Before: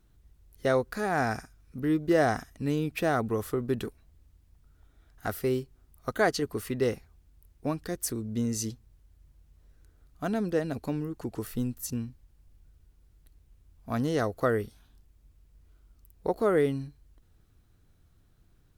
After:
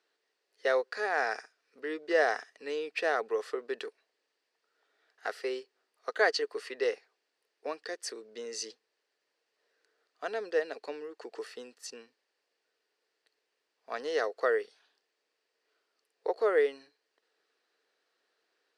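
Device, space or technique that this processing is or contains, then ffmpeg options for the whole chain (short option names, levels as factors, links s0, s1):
phone speaker on a table: -af "highpass=f=440:w=0.5412,highpass=f=440:w=1.3066,equalizer=f=450:t=q:w=4:g=7,equalizer=f=1800:t=q:w=4:g=8,equalizer=f=2700:t=q:w=4:g=5,equalizer=f=4600:t=q:w=4:g=8,equalizer=f=6900:t=q:w=4:g=-4,lowpass=f=7700:w=0.5412,lowpass=f=7700:w=1.3066,volume=0.668"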